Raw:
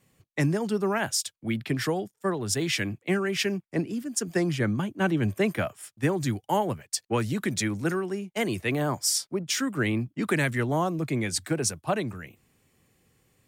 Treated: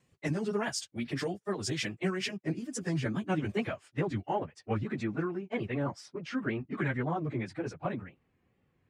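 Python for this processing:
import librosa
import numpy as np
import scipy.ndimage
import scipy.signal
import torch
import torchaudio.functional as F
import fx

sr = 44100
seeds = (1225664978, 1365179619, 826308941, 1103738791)

y = fx.stretch_vocoder_free(x, sr, factor=0.66)
y = fx.wow_flutter(y, sr, seeds[0], rate_hz=2.1, depth_cents=97.0)
y = fx.filter_sweep_lowpass(y, sr, from_hz=8000.0, to_hz=2200.0, start_s=3.25, end_s=4.46, q=0.71)
y = F.gain(torch.from_numpy(y), -2.5).numpy()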